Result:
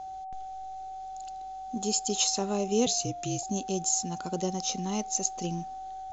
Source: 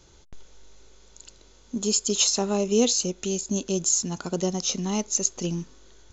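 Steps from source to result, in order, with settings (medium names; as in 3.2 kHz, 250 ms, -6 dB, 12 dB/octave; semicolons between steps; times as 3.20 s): whistle 760 Hz -32 dBFS; 2.86–3.43 s: frequency shift -55 Hz; trim -5 dB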